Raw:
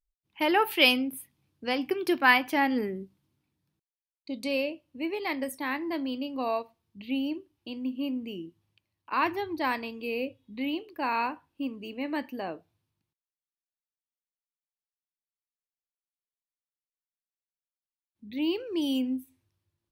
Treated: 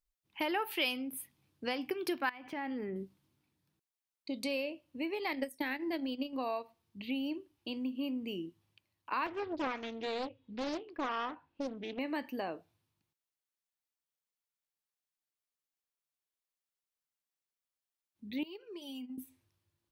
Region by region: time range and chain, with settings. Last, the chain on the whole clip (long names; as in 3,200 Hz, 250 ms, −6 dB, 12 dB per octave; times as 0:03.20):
0:02.29–0:02.96: running median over 3 samples + bass and treble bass +3 dB, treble −13 dB + downward compressor 12 to 1, threshold −33 dBFS
0:05.32–0:06.33: parametric band 1,100 Hz −14.5 dB 0.35 octaves + transient designer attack +10 dB, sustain −10 dB
0:09.26–0:11.99: high-frequency loss of the air 200 metres + highs frequency-modulated by the lows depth 0.8 ms
0:18.43–0:19.18: noise gate −30 dBFS, range −14 dB + downward compressor, threshold −43 dBFS + comb filter 4.9 ms, depth 76%
whole clip: low-shelf EQ 260 Hz −4.5 dB; downward compressor 3 to 1, threshold −36 dBFS; level +1.5 dB